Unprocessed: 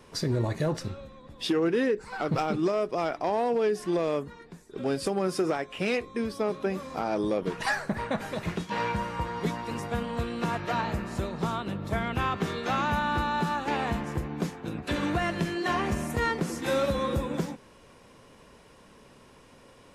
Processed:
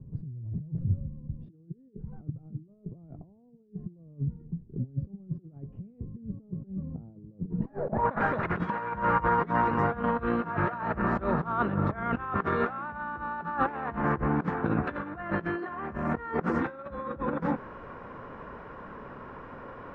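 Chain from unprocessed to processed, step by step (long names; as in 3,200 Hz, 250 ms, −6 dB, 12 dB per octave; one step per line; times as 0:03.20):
high-shelf EQ 2,400 Hz −3.5 dB
compressor whose output falls as the input rises −35 dBFS, ratio −0.5
low-pass filter sweep 140 Hz → 1,400 Hz, 0:07.48–0:08.15
level +3.5 dB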